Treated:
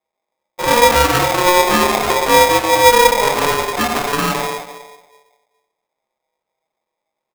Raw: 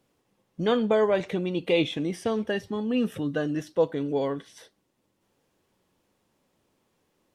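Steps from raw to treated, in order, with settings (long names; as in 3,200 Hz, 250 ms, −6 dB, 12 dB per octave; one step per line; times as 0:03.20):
lower of the sound and its delayed copy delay 0.45 ms
low-pass filter 1,900 Hz 24 dB per octave
low-shelf EQ 170 Hz +12 dB
leveller curve on the samples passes 5
repeating echo 123 ms, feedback 38%, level −13 dB
convolution reverb RT60 0.95 s, pre-delay 6 ms, DRR −6 dB
ring modulator with a square carrier 720 Hz
level −11 dB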